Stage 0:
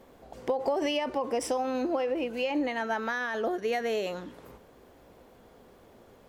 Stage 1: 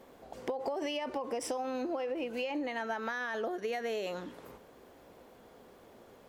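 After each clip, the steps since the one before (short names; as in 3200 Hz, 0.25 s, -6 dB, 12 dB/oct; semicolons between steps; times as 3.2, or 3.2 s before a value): low shelf 120 Hz -8.5 dB; compressor, threshold -32 dBFS, peak gain reduction 8.5 dB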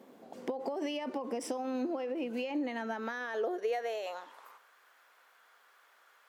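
high-pass sweep 220 Hz -> 1400 Hz, 2.9–4.71; gain -3 dB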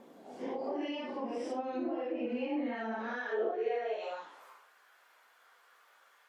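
phase scrambler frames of 0.2 s; treble ducked by the level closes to 2600 Hz, closed at -31.5 dBFS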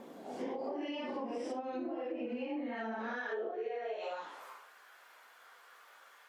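compressor, threshold -41 dBFS, peak gain reduction 12.5 dB; gain +5 dB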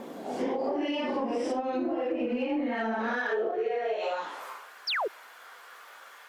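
painted sound fall, 4.87–5.08, 350–5900 Hz -38 dBFS; in parallel at -12 dB: hard clip -37 dBFS, distortion -13 dB; on the sum: gain +7.5 dB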